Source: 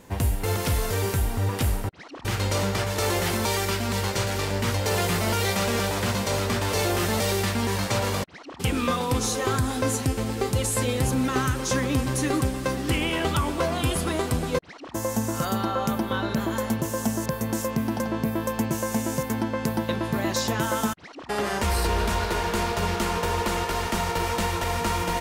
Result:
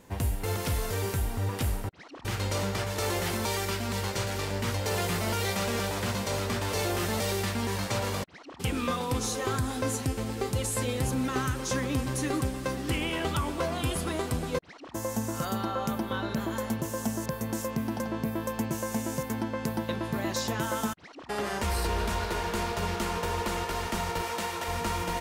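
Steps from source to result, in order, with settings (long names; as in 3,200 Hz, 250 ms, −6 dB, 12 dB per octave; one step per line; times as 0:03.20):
0:24.21–0:24.68: high-pass filter 310 Hz 6 dB per octave
level −5 dB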